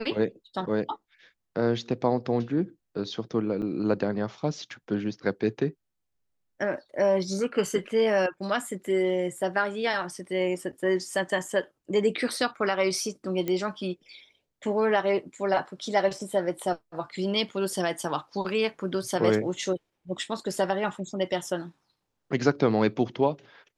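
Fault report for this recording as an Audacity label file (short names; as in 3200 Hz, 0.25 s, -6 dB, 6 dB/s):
3.620000	3.620000	gap 4.3 ms
13.480000	13.480000	pop -16 dBFS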